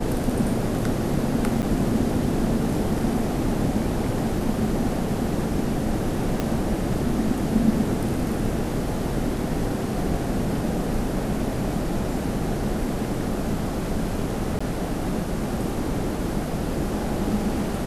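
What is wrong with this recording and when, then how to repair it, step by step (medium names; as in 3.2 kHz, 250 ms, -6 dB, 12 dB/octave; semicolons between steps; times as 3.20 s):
1.62–1.63 s: dropout 7.9 ms
6.40 s: pop -11 dBFS
14.59–14.61 s: dropout 15 ms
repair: de-click; interpolate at 1.62 s, 7.9 ms; interpolate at 14.59 s, 15 ms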